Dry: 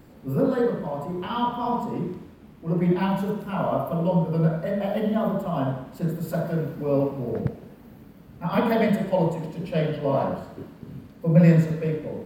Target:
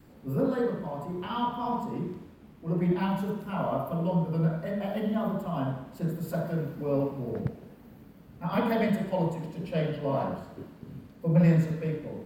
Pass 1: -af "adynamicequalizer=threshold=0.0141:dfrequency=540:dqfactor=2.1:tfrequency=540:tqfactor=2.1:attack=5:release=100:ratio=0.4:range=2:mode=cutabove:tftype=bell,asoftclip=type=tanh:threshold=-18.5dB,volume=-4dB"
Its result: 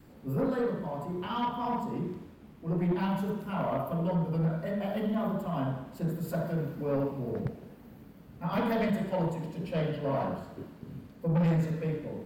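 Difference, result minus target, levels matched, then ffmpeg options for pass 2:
soft clipping: distortion +12 dB
-af "adynamicequalizer=threshold=0.0141:dfrequency=540:dqfactor=2.1:tfrequency=540:tqfactor=2.1:attack=5:release=100:ratio=0.4:range=2:mode=cutabove:tftype=bell,asoftclip=type=tanh:threshold=-8.5dB,volume=-4dB"

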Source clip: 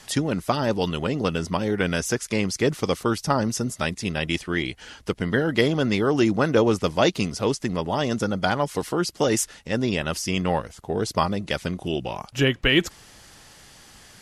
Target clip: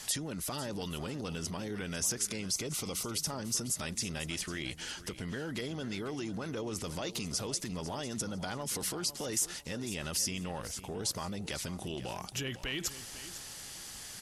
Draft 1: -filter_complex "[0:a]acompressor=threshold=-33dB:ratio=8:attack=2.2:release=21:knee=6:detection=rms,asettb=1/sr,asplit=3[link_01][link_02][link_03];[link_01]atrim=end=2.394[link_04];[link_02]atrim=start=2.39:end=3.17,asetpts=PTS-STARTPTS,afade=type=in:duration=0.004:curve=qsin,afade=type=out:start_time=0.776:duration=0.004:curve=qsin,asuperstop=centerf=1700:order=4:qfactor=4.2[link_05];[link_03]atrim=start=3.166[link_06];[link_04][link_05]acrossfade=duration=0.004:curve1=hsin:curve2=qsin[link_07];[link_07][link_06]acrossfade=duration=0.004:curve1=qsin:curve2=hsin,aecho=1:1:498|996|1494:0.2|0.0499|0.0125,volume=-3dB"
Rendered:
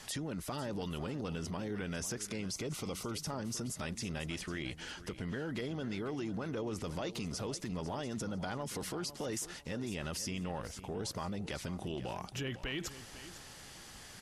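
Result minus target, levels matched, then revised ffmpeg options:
8,000 Hz band −5.5 dB
-filter_complex "[0:a]acompressor=threshold=-33dB:ratio=8:attack=2.2:release=21:knee=6:detection=rms,highshelf=frequency=3900:gain=11.5,asettb=1/sr,asplit=3[link_01][link_02][link_03];[link_01]atrim=end=2.394[link_04];[link_02]atrim=start=2.39:end=3.17,asetpts=PTS-STARTPTS,afade=type=in:duration=0.004:curve=qsin,afade=type=out:start_time=0.776:duration=0.004:curve=qsin,asuperstop=centerf=1700:order=4:qfactor=4.2[link_05];[link_03]atrim=start=3.166[link_06];[link_04][link_05]acrossfade=duration=0.004:curve1=hsin:curve2=qsin[link_07];[link_07][link_06]acrossfade=duration=0.004:curve1=qsin:curve2=hsin,aecho=1:1:498|996|1494:0.2|0.0499|0.0125,volume=-3dB"

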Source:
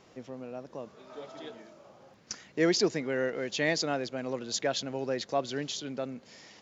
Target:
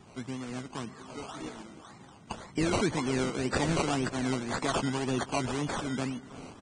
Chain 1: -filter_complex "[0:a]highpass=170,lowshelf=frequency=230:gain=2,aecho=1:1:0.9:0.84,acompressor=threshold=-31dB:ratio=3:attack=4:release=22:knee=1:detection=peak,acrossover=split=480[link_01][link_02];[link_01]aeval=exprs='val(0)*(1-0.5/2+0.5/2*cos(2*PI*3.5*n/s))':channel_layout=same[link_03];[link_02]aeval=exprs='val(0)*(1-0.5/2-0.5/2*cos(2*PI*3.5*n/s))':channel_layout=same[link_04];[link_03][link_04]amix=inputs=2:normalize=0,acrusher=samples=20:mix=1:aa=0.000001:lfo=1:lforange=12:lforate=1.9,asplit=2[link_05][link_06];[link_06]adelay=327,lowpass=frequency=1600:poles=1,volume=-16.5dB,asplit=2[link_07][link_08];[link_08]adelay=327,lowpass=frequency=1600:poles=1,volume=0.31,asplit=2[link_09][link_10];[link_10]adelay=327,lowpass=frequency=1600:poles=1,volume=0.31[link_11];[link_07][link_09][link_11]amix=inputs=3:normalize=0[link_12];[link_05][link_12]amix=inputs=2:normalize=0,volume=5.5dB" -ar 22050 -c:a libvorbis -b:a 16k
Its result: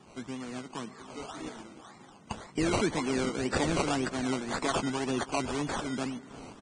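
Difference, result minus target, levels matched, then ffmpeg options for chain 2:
125 Hz band −3.0 dB
-filter_complex "[0:a]lowshelf=frequency=230:gain=2,aecho=1:1:0.9:0.84,acompressor=threshold=-31dB:ratio=3:attack=4:release=22:knee=1:detection=peak,acrossover=split=480[link_01][link_02];[link_01]aeval=exprs='val(0)*(1-0.5/2+0.5/2*cos(2*PI*3.5*n/s))':channel_layout=same[link_03];[link_02]aeval=exprs='val(0)*(1-0.5/2-0.5/2*cos(2*PI*3.5*n/s))':channel_layout=same[link_04];[link_03][link_04]amix=inputs=2:normalize=0,acrusher=samples=20:mix=1:aa=0.000001:lfo=1:lforange=12:lforate=1.9,asplit=2[link_05][link_06];[link_06]adelay=327,lowpass=frequency=1600:poles=1,volume=-16.5dB,asplit=2[link_07][link_08];[link_08]adelay=327,lowpass=frequency=1600:poles=1,volume=0.31,asplit=2[link_09][link_10];[link_10]adelay=327,lowpass=frequency=1600:poles=1,volume=0.31[link_11];[link_07][link_09][link_11]amix=inputs=3:normalize=0[link_12];[link_05][link_12]amix=inputs=2:normalize=0,volume=5.5dB" -ar 22050 -c:a libvorbis -b:a 16k

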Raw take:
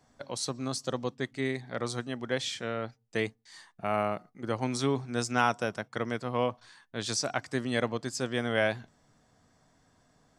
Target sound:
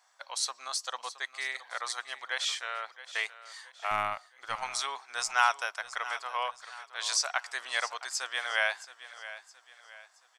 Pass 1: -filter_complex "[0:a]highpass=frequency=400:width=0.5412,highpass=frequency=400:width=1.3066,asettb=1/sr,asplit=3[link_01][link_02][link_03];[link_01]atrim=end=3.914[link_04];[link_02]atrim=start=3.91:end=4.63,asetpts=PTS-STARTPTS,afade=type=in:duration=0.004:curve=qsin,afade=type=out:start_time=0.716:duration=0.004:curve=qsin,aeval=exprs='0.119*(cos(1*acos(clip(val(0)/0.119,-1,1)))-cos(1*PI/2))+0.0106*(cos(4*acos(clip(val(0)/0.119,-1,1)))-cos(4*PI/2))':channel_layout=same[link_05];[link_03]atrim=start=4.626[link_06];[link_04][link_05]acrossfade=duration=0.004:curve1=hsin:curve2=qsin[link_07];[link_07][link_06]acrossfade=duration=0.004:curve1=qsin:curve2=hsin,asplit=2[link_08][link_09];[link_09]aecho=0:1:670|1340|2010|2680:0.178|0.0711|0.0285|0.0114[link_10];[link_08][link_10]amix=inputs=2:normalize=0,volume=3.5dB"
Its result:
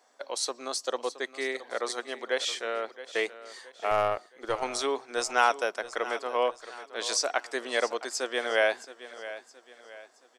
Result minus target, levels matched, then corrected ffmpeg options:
500 Hz band +12.0 dB
-filter_complex "[0:a]highpass=frequency=860:width=0.5412,highpass=frequency=860:width=1.3066,asettb=1/sr,asplit=3[link_01][link_02][link_03];[link_01]atrim=end=3.914[link_04];[link_02]atrim=start=3.91:end=4.63,asetpts=PTS-STARTPTS,afade=type=in:duration=0.004:curve=qsin,afade=type=out:start_time=0.716:duration=0.004:curve=qsin,aeval=exprs='0.119*(cos(1*acos(clip(val(0)/0.119,-1,1)))-cos(1*PI/2))+0.0106*(cos(4*acos(clip(val(0)/0.119,-1,1)))-cos(4*PI/2))':channel_layout=same[link_05];[link_03]atrim=start=4.626[link_06];[link_04][link_05]acrossfade=duration=0.004:curve1=hsin:curve2=qsin[link_07];[link_07][link_06]acrossfade=duration=0.004:curve1=qsin:curve2=hsin,asplit=2[link_08][link_09];[link_09]aecho=0:1:670|1340|2010|2680:0.178|0.0711|0.0285|0.0114[link_10];[link_08][link_10]amix=inputs=2:normalize=0,volume=3.5dB"

